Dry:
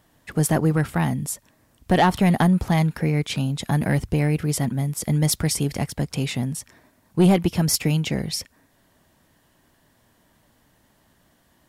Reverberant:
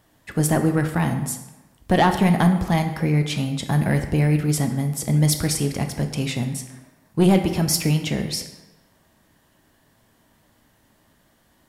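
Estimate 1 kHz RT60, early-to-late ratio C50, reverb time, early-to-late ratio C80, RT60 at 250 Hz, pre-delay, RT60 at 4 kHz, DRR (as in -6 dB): 1.1 s, 9.0 dB, 1.1 s, 10.5 dB, 0.95 s, 7 ms, 0.80 s, 6.0 dB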